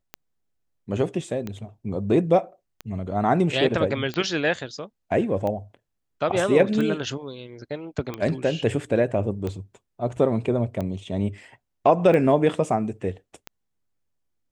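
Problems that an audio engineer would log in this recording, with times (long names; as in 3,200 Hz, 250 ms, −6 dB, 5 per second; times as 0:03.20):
scratch tick 45 rpm −17 dBFS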